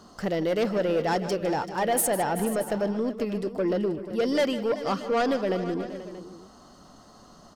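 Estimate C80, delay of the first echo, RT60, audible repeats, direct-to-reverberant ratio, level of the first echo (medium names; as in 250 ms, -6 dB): no reverb, 155 ms, no reverb, 4, no reverb, -14.5 dB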